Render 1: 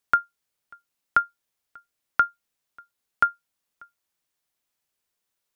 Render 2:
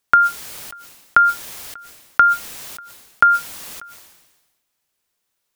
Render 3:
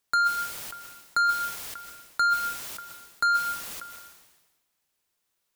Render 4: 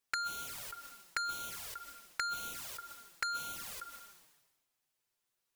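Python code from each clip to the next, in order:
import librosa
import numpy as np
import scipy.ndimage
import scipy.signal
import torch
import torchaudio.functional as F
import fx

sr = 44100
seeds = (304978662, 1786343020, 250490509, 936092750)

y1 = fx.sustainer(x, sr, db_per_s=47.0)
y1 = y1 * 10.0 ** (6.5 / 20.0)
y2 = 10.0 ** (-16.5 / 20.0) * np.tanh(y1 / 10.0 ** (-16.5 / 20.0))
y2 = fx.rev_plate(y2, sr, seeds[0], rt60_s=0.58, hf_ratio=0.75, predelay_ms=115, drr_db=10.0)
y2 = y2 * 10.0 ** (-3.5 / 20.0)
y3 = fx.env_flanger(y2, sr, rest_ms=8.0, full_db=-26.0)
y3 = y3 * 10.0 ** (-3.5 / 20.0)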